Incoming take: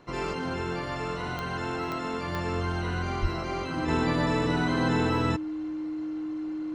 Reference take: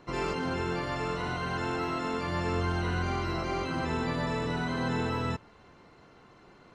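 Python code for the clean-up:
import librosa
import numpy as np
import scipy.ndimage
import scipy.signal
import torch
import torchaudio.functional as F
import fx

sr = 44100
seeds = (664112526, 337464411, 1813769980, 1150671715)

y = fx.fix_declick_ar(x, sr, threshold=10.0)
y = fx.notch(y, sr, hz=310.0, q=30.0)
y = fx.fix_deplosive(y, sr, at_s=(3.21,))
y = fx.fix_level(y, sr, at_s=3.88, step_db=-4.5)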